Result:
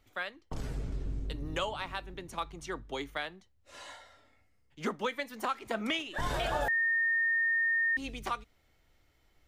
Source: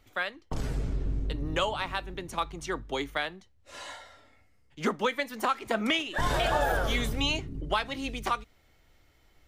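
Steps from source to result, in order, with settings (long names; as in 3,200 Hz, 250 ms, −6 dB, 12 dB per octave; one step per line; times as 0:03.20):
0:00.92–0:01.58: high-shelf EQ 4,400 Hz +7 dB
0:06.68–0:07.97: beep over 1,830 Hz −20 dBFS
level −5.5 dB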